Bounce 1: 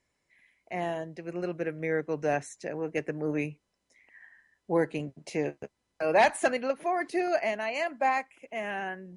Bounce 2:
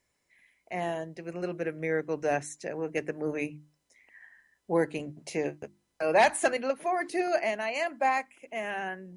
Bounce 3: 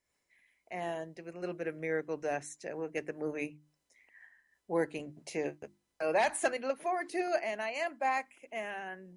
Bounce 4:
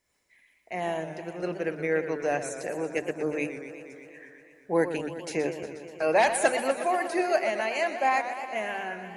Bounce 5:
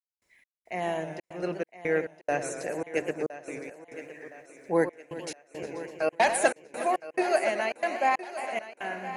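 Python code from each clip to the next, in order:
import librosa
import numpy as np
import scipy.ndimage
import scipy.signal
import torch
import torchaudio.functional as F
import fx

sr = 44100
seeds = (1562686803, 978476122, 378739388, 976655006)

y1 = fx.high_shelf(x, sr, hz=8800.0, db=9.0)
y1 = fx.hum_notches(y1, sr, base_hz=50, count=7)
y2 = fx.peak_eq(y1, sr, hz=130.0, db=-3.5, octaves=1.7)
y2 = fx.am_noise(y2, sr, seeds[0], hz=5.7, depth_pct=55)
y2 = y2 * librosa.db_to_amplitude(-2.0)
y3 = fx.echo_warbled(y2, sr, ms=120, feedback_pct=76, rate_hz=2.8, cents=149, wet_db=-11.0)
y3 = y3 * librosa.db_to_amplitude(6.5)
y4 = fx.step_gate(y3, sr, bpm=138, pattern='..xx..xxxxx.xxx', floor_db=-60.0, edge_ms=4.5)
y4 = fx.echo_thinned(y4, sr, ms=1015, feedback_pct=47, hz=230.0, wet_db=-14)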